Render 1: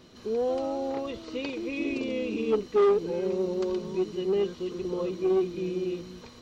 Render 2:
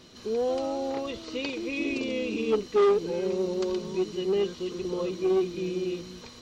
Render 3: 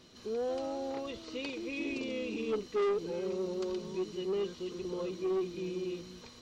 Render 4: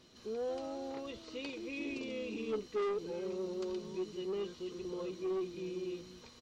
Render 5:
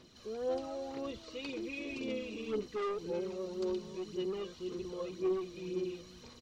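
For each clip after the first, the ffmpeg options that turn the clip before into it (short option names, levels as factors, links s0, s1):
-af "equalizer=f=6100:t=o:w=2.7:g=6"
-af "asoftclip=type=tanh:threshold=0.106,volume=0.501"
-filter_complex "[0:a]asplit=2[s0][s1];[s1]adelay=14,volume=0.2[s2];[s0][s2]amix=inputs=2:normalize=0,volume=0.631"
-af "aphaser=in_gain=1:out_gain=1:delay=1.8:decay=0.44:speed=1.9:type=sinusoidal"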